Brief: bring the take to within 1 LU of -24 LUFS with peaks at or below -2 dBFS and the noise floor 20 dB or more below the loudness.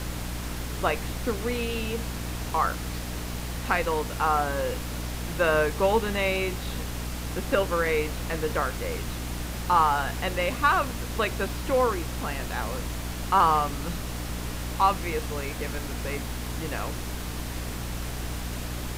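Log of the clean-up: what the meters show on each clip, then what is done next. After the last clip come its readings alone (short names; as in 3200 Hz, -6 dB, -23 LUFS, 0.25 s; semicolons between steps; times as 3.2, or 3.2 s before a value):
hum 60 Hz; harmonics up to 300 Hz; hum level -32 dBFS; noise floor -34 dBFS; noise floor target -48 dBFS; loudness -28.0 LUFS; peak -9.0 dBFS; loudness target -24.0 LUFS
-> de-hum 60 Hz, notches 5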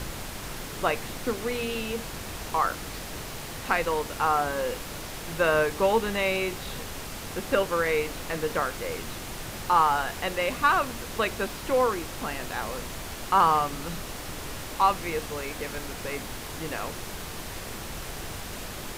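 hum none; noise floor -38 dBFS; noise floor target -49 dBFS
-> noise print and reduce 11 dB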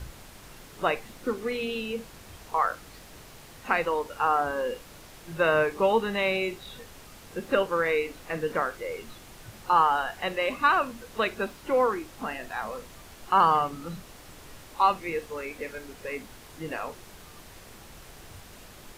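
noise floor -49 dBFS; loudness -27.5 LUFS; peak -9.5 dBFS; loudness target -24.0 LUFS
-> gain +3.5 dB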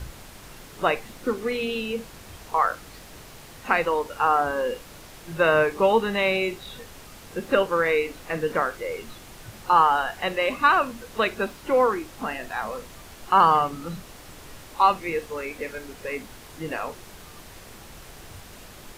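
loudness -24.0 LUFS; peak -6.0 dBFS; noise floor -45 dBFS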